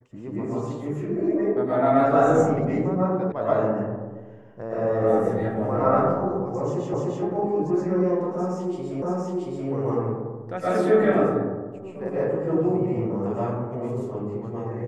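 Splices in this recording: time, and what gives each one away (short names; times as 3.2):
3.32 sound cut off
6.94 repeat of the last 0.3 s
9.02 repeat of the last 0.68 s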